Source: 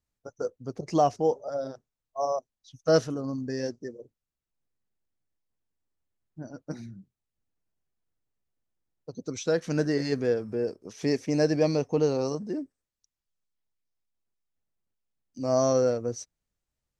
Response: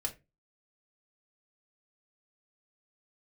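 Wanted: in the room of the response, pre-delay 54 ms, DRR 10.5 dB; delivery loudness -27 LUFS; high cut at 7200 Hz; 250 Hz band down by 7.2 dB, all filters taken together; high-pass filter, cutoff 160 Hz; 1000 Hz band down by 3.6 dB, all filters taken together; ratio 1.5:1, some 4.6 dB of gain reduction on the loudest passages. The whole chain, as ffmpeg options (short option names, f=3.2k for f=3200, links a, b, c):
-filter_complex "[0:a]highpass=160,lowpass=7.2k,equalizer=f=250:t=o:g=-8.5,equalizer=f=1k:t=o:g=-5,acompressor=threshold=-33dB:ratio=1.5,asplit=2[a][b];[1:a]atrim=start_sample=2205,adelay=54[c];[b][c]afir=irnorm=-1:irlink=0,volume=-12dB[d];[a][d]amix=inputs=2:normalize=0,volume=7.5dB"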